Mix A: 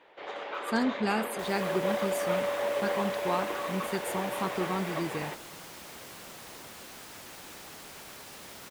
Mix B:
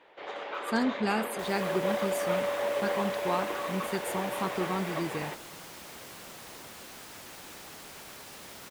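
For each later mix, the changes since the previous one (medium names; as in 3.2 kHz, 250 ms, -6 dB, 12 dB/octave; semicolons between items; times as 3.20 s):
no change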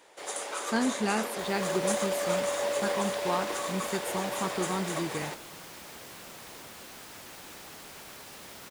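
first sound: remove low-pass 3.3 kHz 24 dB/octave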